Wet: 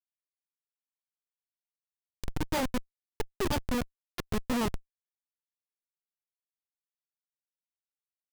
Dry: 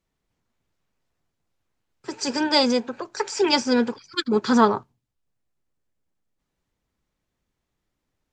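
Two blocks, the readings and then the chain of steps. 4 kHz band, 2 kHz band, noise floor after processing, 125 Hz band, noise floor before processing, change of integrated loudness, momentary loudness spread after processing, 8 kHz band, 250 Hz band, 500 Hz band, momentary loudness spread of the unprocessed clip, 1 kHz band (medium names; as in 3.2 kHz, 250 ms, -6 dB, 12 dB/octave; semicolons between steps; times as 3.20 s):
-16.0 dB, -11.0 dB, under -85 dBFS, +2.5 dB, -80 dBFS, -12.0 dB, 12 LU, -9.5 dB, -11.5 dB, -13.5 dB, 12 LU, -13.0 dB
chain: hum 50 Hz, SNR 32 dB; Schmitt trigger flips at -16 dBFS; trim -1 dB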